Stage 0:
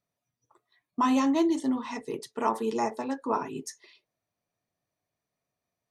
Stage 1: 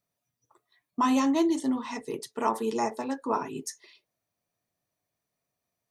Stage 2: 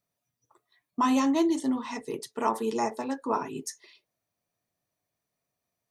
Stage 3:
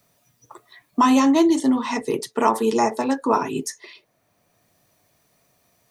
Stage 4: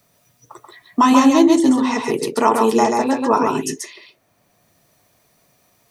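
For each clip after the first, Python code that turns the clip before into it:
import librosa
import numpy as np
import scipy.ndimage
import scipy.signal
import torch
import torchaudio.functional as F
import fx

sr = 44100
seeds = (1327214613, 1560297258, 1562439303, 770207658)

y1 = fx.high_shelf(x, sr, hz=7200.0, db=6.5)
y2 = y1
y3 = fx.band_squash(y2, sr, depth_pct=40)
y3 = y3 * 10.0 ** (8.5 / 20.0)
y4 = y3 + 10.0 ** (-4.0 / 20.0) * np.pad(y3, (int(135 * sr / 1000.0), 0))[:len(y3)]
y4 = y4 * 10.0 ** (3.0 / 20.0)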